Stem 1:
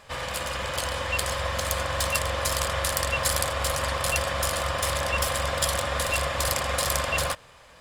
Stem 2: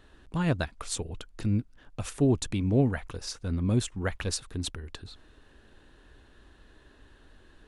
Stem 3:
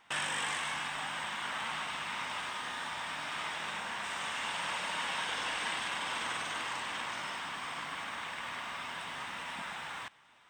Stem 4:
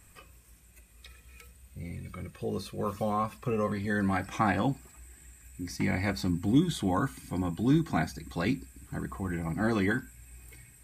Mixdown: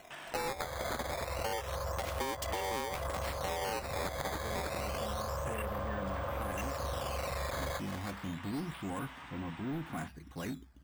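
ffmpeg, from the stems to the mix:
ffmpeg -i stem1.wav -i stem2.wav -i stem3.wav -i stem4.wav -filter_complex "[0:a]aemphasis=mode=reproduction:type=75kf,aeval=exprs='0.2*sin(PI/2*2.24*val(0)/0.2)':channel_layout=same,afwtdn=0.1,adelay=450,volume=-13.5dB[link_01];[1:a]aeval=exprs='val(0)*sgn(sin(2*PI*670*n/s))':channel_layout=same,volume=1dB,asplit=2[link_02][link_03];[2:a]highshelf=frequency=3900:gain=-8.5,volume=-7.5dB[link_04];[3:a]lowpass=2300,aemphasis=mode=production:type=50kf,asoftclip=type=tanh:threshold=-24.5dB,adelay=2000,volume=-7.5dB[link_05];[link_03]apad=whole_len=463023[link_06];[link_04][link_06]sidechaincompress=threshold=-52dB:ratio=3:attack=5.7:release=1000[link_07];[link_01][link_02][link_05]amix=inputs=3:normalize=0,acrusher=samples=9:mix=1:aa=0.000001:lfo=1:lforange=14.4:lforate=0.29,acompressor=threshold=-27dB:ratio=6,volume=0dB[link_08];[link_07][link_08]amix=inputs=2:normalize=0,acompressor=threshold=-33dB:ratio=6" out.wav

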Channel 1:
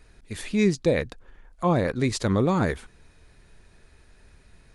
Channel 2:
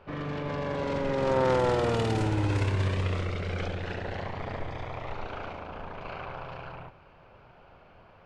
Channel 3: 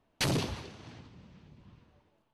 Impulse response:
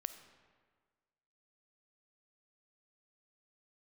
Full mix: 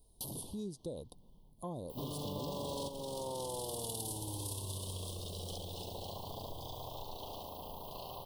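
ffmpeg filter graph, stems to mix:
-filter_complex "[0:a]volume=-12.5dB,asplit=2[link_01][link_02];[1:a]crystalizer=i=8.5:c=0,adelay=1900,volume=0.5dB[link_03];[2:a]volume=-12.5dB[link_04];[link_02]apad=whole_len=447968[link_05];[link_03][link_05]sidechaingate=range=-8dB:threshold=-54dB:ratio=16:detection=peak[link_06];[link_01][link_06][link_04]amix=inputs=3:normalize=0,aexciter=amount=9.6:drive=6.4:freq=9700,asuperstop=centerf=1800:order=12:qfactor=0.87,acompressor=threshold=-41dB:ratio=3"

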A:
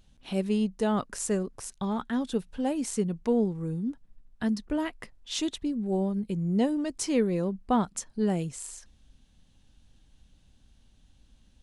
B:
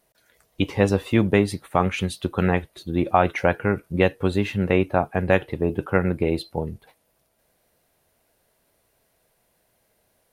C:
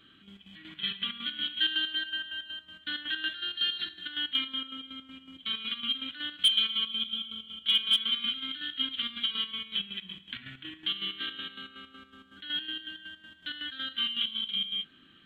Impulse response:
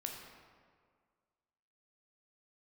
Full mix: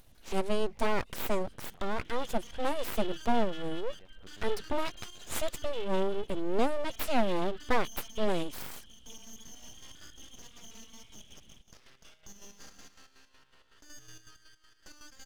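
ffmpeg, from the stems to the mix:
-filter_complex "[0:a]volume=1dB,asplit=2[link_01][link_02];[1:a]acompressor=threshold=-24dB:ratio=6,alimiter=limit=-20dB:level=0:latency=1:release=389,volume=-15.5dB,asplit=2[link_03][link_04];[link_04]volume=-22.5dB[link_05];[2:a]adelay=1400,volume=-11dB[link_06];[link_02]apad=whole_len=455488[link_07];[link_03][link_07]sidechaincompress=threshold=-39dB:ratio=5:attack=16:release=677[link_08];[link_08][link_06]amix=inputs=2:normalize=0,acompressor=mode=upward:threshold=-53dB:ratio=2.5,alimiter=level_in=14dB:limit=-24dB:level=0:latency=1:release=65,volume=-14dB,volume=0dB[link_09];[link_05]aecho=0:1:737:1[link_10];[link_01][link_09][link_10]amix=inputs=3:normalize=0,aeval=exprs='abs(val(0))':channel_layout=same"

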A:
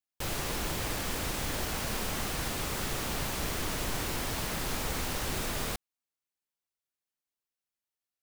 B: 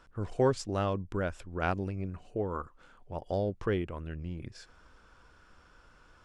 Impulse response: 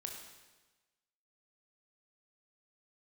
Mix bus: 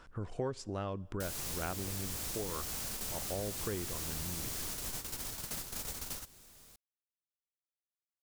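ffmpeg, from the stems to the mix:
-filter_complex "[0:a]bass=frequency=250:gain=2,treble=frequency=4000:gain=12,adelay=1000,volume=-4dB[link_01];[1:a]volume=3dB,asplit=3[link_02][link_03][link_04];[link_03]volume=-20.5dB[link_05];[link_04]apad=whole_len=406866[link_06];[link_01][link_06]sidechaingate=range=-27dB:threshold=-54dB:ratio=16:detection=peak[link_07];[2:a]atrim=start_sample=2205[link_08];[link_05][link_08]afir=irnorm=-1:irlink=0[link_09];[link_07][link_02][link_09]amix=inputs=3:normalize=0,acompressor=threshold=-40dB:ratio=2.5"

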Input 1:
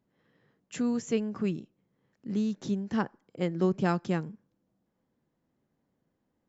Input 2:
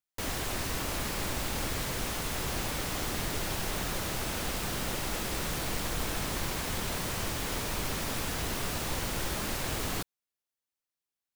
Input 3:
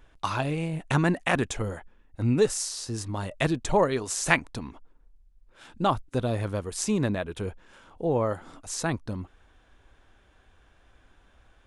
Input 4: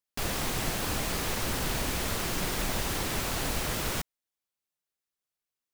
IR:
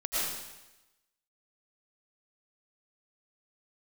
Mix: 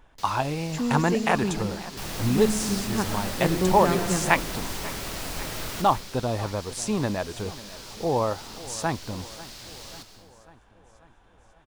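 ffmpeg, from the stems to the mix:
-filter_complex "[0:a]volume=-1dB,asplit=2[link_01][link_02];[link_02]volume=-9dB[link_03];[1:a]equalizer=frequency=4700:width=0.91:gain=13.5,volume=-16.5dB,asplit=2[link_04][link_05];[link_05]volume=-14dB[link_06];[2:a]equalizer=frequency=870:width_type=o:width=0.71:gain=8,volume=-1dB,asplit=2[link_07][link_08];[link_08]volume=-18dB[link_09];[3:a]adelay=1800,volume=-7dB,asplit=2[link_10][link_11];[link_11]volume=-8.5dB[link_12];[4:a]atrim=start_sample=2205[link_13];[link_03][link_06][link_12]amix=inputs=3:normalize=0[link_14];[link_14][link_13]afir=irnorm=-1:irlink=0[link_15];[link_09]aecho=0:1:542|1084|1626|2168|2710|3252|3794|4336|4878:1|0.59|0.348|0.205|0.121|0.0715|0.0422|0.0249|0.0147[link_16];[link_01][link_04][link_07][link_10][link_15][link_16]amix=inputs=6:normalize=0"

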